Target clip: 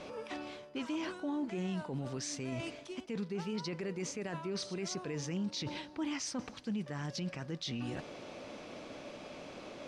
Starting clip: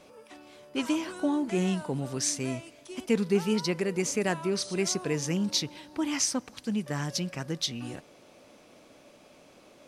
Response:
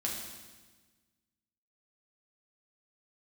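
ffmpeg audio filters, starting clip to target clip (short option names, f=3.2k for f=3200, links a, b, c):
-af "areverse,acompressor=threshold=-43dB:ratio=4,areverse,lowpass=5.2k,alimiter=level_in=14dB:limit=-24dB:level=0:latency=1:release=10,volume=-14dB,volume=8dB"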